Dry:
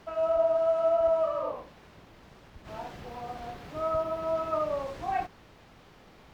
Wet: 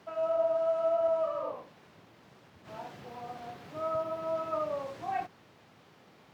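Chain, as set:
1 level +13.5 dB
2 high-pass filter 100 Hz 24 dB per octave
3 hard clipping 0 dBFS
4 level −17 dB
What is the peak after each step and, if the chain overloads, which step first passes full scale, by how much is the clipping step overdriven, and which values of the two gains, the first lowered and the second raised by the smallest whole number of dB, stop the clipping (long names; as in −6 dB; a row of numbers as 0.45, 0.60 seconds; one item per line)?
−3.5, −3.5, −3.5, −20.5 dBFS
no step passes full scale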